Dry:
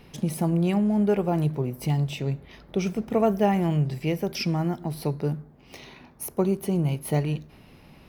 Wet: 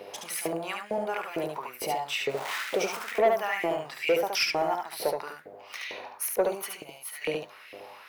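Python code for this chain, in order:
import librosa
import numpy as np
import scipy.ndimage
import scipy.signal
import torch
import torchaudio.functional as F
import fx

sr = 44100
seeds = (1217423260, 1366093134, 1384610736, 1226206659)

p1 = fx.zero_step(x, sr, step_db=-34.0, at=(2.29, 3.12))
p2 = fx.over_compress(p1, sr, threshold_db=-27.0, ratio=-1.0)
p3 = p1 + (p2 * librosa.db_to_amplitude(0.0))
p4 = fx.dmg_buzz(p3, sr, base_hz=100.0, harmonics=7, level_db=-37.0, tilt_db=-7, odd_only=False)
p5 = fx.filter_lfo_highpass(p4, sr, shape='saw_up', hz=2.2, low_hz=460.0, high_hz=2500.0, q=3.4)
p6 = fx.tone_stack(p5, sr, knobs='5-5-5', at=(6.81, 7.21), fade=0.02)
p7 = 10.0 ** (-11.5 / 20.0) * np.tanh(p6 / 10.0 ** (-11.5 / 20.0))
p8 = p7 + 10.0 ** (-4.0 / 20.0) * np.pad(p7, (int(72 * sr / 1000.0), 0))[:len(p7)]
y = p8 * librosa.db_to_amplitude(-4.5)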